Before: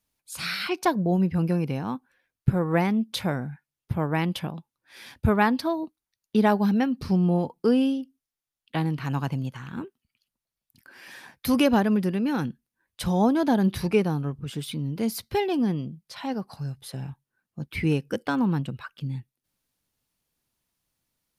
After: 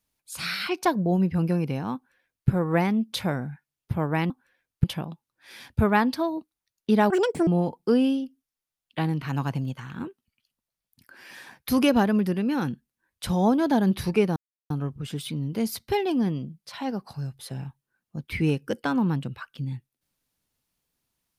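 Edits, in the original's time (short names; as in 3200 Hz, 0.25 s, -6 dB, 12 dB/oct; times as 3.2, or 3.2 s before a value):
1.95–2.49 copy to 4.3
6.56–7.24 speed 183%
14.13 insert silence 0.34 s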